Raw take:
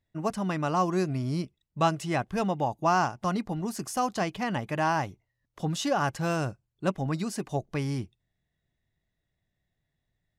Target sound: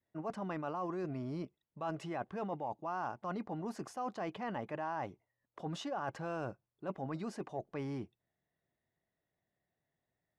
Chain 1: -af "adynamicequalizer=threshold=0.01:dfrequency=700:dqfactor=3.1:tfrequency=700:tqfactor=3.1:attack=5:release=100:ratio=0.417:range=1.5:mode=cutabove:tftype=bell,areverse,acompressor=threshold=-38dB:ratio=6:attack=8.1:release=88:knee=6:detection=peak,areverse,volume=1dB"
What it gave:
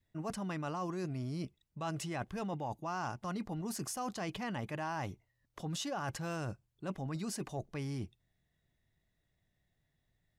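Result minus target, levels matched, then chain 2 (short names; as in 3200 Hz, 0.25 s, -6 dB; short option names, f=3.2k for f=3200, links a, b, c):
500 Hz band -3.0 dB
-af "adynamicequalizer=threshold=0.01:dfrequency=700:dqfactor=3.1:tfrequency=700:tqfactor=3.1:attack=5:release=100:ratio=0.417:range=1.5:mode=cutabove:tftype=bell,bandpass=f=660:t=q:w=0.65:csg=0,areverse,acompressor=threshold=-38dB:ratio=6:attack=8.1:release=88:knee=6:detection=peak,areverse,volume=1dB"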